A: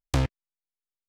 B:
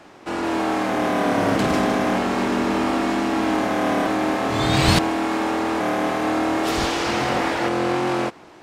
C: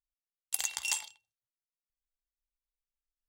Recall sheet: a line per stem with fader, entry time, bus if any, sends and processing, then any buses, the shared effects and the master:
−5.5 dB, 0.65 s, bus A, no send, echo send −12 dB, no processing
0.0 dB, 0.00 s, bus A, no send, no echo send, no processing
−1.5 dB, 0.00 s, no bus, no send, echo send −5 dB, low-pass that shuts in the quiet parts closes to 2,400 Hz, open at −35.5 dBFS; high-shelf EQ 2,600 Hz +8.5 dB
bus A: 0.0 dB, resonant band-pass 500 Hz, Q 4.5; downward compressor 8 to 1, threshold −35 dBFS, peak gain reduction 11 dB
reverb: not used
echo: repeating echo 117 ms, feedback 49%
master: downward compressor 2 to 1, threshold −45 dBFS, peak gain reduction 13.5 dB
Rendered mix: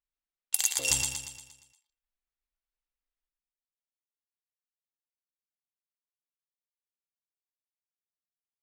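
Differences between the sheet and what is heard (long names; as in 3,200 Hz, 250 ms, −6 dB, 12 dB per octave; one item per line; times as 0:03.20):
stem B: muted
master: missing downward compressor 2 to 1, threshold −45 dBFS, peak gain reduction 13.5 dB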